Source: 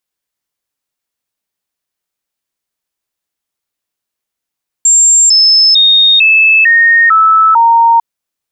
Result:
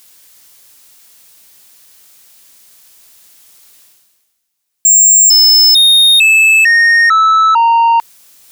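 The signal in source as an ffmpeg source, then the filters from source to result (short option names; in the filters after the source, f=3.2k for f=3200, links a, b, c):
-f lavfi -i "aevalsrc='0.668*clip(min(mod(t,0.45),0.45-mod(t,0.45))/0.005,0,1)*sin(2*PI*7400*pow(2,-floor(t/0.45)/2)*mod(t,0.45))':d=3.15:s=44100"
-af "highshelf=f=2.9k:g=10.5,areverse,acompressor=mode=upward:threshold=-22dB:ratio=2.5,areverse,asoftclip=type=tanh:threshold=-5.5dB"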